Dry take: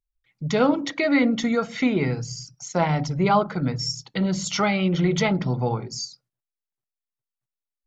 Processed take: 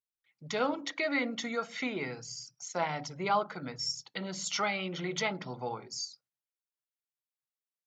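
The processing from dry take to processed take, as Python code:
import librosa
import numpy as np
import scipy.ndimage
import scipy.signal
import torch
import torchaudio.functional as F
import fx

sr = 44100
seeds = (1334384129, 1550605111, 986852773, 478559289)

y = fx.highpass(x, sr, hz=710.0, slope=6)
y = F.gain(torch.from_numpy(y), -6.0).numpy()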